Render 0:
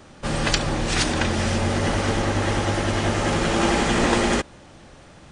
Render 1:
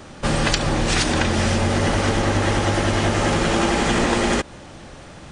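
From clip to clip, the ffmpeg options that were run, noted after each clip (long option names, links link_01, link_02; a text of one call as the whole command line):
ffmpeg -i in.wav -af "acompressor=threshold=-22dB:ratio=6,volume=6.5dB" out.wav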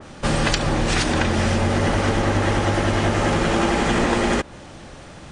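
ffmpeg -i in.wav -af "adynamicequalizer=threshold=0.02:dfrequency=2900:dqfactor=0.7:tfrequency=2900:tqfactor=0.7:attack=5:release=100:ratio=0.375:range=2:mode=cutabove:tftype=highshelf" out.wav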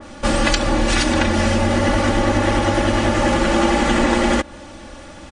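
ffmpeg -i in.wav -af "aecho=1:1:3.5:0.68,volume=1dB" out.wav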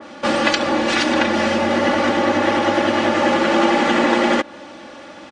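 ffmpeg -i in.wav -af "highpass=240,lowpass=4800,volume=2dB" out.wav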